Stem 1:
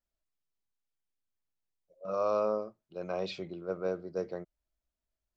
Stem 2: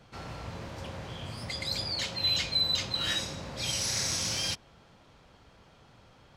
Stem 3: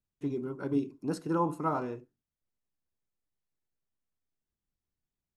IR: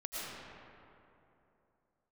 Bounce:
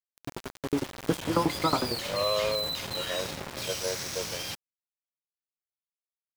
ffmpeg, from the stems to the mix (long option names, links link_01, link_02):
-filter_complex "[0:a]highpass=460,aecho=1:1:1.9:0.82,volume=-7dB[link_01];[1:a]lowshelf=frequency=100:gain=-8,alimiter=level_in=5.5dB:limit=-24dB:level=0:latency=1:release=18,volume=-5.5dB,volume=1dB[link_02];[2:a]highshelf=frequency=5200:gain=10,dynaudnorm=framelen=280:gausssize=3:maxgain=4dB,aeval=exprs='val(0)*pow(10,-20*if(lt(mod(11*n/s,1),2*abs(11)/1000),1-mod(11*n/s,1)/(2*abs(11)/1000),(mod(11*n/s,1)-2*abs(11)/1000)/(1-2*abs(11)/1000))/20)':channel_layout=same,volume=1dB[link_03];[link_01][link_02][link_03]amix=inputs=3:normalize=0,dynaudnorm=framelen=600:gausssize=3:maxgain=5.5dB,aeval=exprs='val(0)*gte(abs(val(0)),0.0299)':channel_layout=same,adynamicequalizer=threshold=0.00794:dfrequency=3600:dqfactor=0.7:tfrequency=3600:tqfactor=0.7:attack=5:release=100:ratio=0.375:range=2.5:mode=cutabove:tftype=highshelf"